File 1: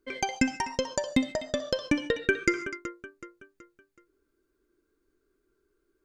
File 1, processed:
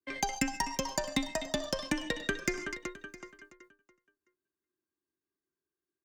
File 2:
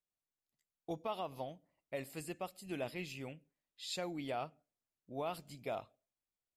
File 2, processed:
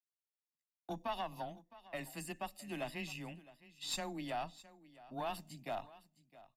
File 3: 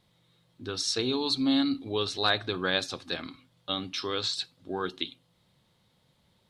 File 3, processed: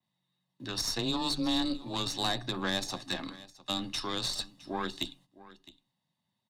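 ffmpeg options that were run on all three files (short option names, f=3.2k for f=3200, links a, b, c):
-filter_complex "[0:a]bandreject=f=430:w=12,agate=range=-16dB:threshold=-55dB:ratio=16:detection=peak,highpass=120,aecho=1:1:1.1:0.61,adynamicequalizer=threshold=0.00501:dfrequency=6800:dqfactor=1.4:tfrequency=6800:tqfactor=1.4:attack=5:release=100:ratio=0.375:range=2:mode=boostabove:tftype=bell,acrossover=split=600|1400|4400[a][b][c][d];[a]acompressor=threshold=-31dB:ratio=4[e];[b]acompressor=threshold=-39dB:ratio=4[f];[c]acompressor=threshold=-40dB:ratio=4[g];[d]acompressor=threshold=-36dB:ratio=4[h];[e][f][g][h]amix=inputs=4:normalize=0,aeval=exprs='0.224*(cos(1*acos(clip(val(0)/0.224,-1,1)))-cos(1*PI/2))+0.02*(cos(8*acos(clip(val(0)/0.224,-1,1)))-cos(8*PI/2))':c=same,afreqshift=14,aecho=1:1:662:0.112"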